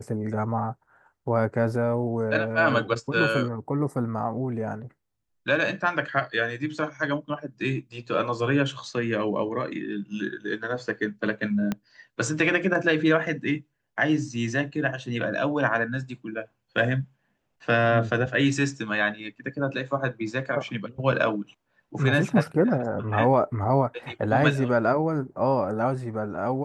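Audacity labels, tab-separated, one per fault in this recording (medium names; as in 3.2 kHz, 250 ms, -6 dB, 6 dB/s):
11.720000	11.720000	pop -14 dBFS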